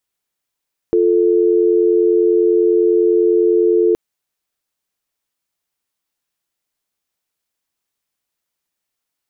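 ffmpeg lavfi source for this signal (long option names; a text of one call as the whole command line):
ffmpeg -f lavfi -i "aevalsrc='0.224*(sin(2*PI*350*t)+sin(2*PI*440*t))':duration=3.02:sample_rate=44100" out.wav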